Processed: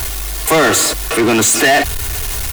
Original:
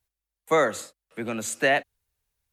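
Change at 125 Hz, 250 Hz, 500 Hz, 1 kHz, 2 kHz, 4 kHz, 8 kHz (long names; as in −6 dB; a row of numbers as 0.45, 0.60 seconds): +18.0, +16.5, +10.0, +12.5, +12.0, +19.0, +22.0 decibels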